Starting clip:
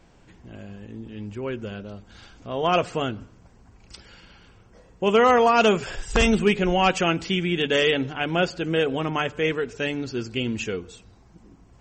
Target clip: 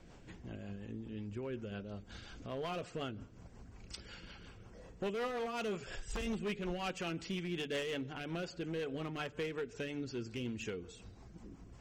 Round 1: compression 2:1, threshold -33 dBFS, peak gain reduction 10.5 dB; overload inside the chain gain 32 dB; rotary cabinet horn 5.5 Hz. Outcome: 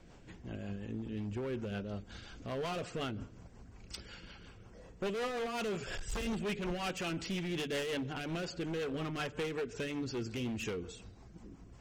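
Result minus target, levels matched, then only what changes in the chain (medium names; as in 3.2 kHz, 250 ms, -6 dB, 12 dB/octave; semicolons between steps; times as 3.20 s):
compression: peak gain reduction -5.5 dB
change: compression 2:1, threshold -44 dBFS, peak gain reduction 16 dB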